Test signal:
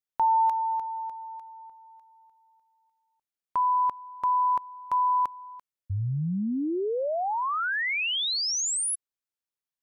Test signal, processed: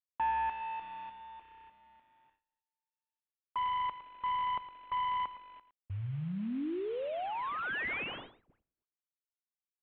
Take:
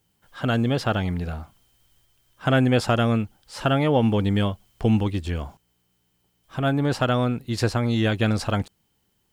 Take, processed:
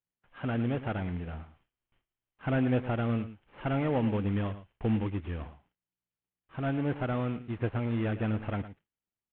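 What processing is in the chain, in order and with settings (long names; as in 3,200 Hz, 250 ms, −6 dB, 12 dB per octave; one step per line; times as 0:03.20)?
variable-slope delta modulation 16 kbit/s
parametric band 290 Hz +2 dB
on a send: single-tap delay 111 ms −13.5 dB
on the sum: noise gate with hold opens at −51 dBFS, closes at −59 dBFS, hold 28 ms, range −20 dB
level −8.5 dB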